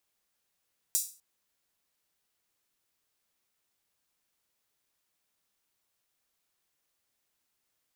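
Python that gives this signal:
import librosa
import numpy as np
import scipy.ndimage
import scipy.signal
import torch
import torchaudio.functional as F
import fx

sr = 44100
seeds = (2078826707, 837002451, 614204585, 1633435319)

y = fx.drum_hat_open(sr, length_s=0.25, from_hz=6800.0, decay_s=0.36)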